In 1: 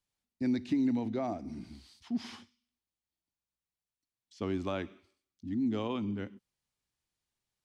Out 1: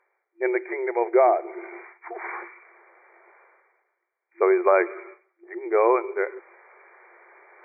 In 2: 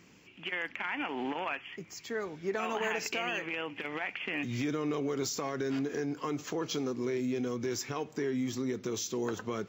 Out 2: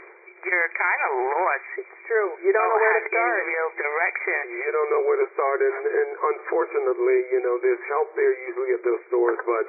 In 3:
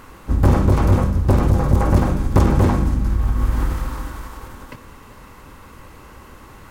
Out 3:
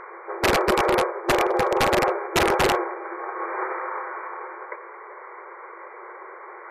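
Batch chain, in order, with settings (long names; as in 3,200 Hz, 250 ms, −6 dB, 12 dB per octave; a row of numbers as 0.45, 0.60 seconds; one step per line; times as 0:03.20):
brick-wall band-pass 340–2,400 Hz
wrap-around overflow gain 16 dB
reversed playback
upward compression, threshold −50 dBFS
reversed playback
wave folding −19 dBFS
MP3 64 kbit/s 32,000 Hz
loudness normalisation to −23 LKFS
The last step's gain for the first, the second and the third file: +19.0, +14.5, +6.0 decibels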